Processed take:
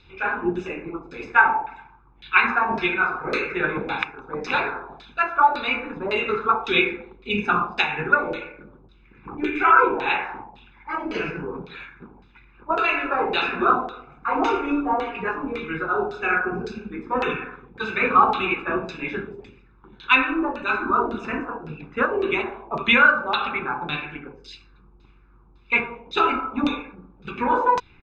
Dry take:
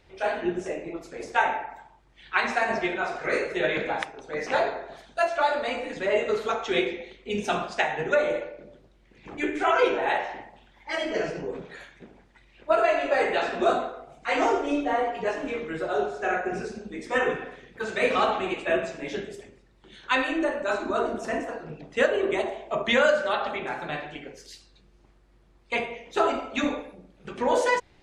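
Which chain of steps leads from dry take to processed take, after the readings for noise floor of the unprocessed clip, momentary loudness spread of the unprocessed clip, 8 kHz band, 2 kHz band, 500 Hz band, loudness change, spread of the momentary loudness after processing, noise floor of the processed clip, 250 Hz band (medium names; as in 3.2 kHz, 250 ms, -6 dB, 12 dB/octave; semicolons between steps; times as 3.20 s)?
-59 dBFS, 15 LU, under -10 dB, +6.5 dB, -2.5 dB, +4.5 dB, 16 LU, -53 dBFS, +4.0 dB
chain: comb 0.8 ms, depth 81%; LFO low-pass saw down 1.8 Hz 700–4200 Hz; trim +1 dB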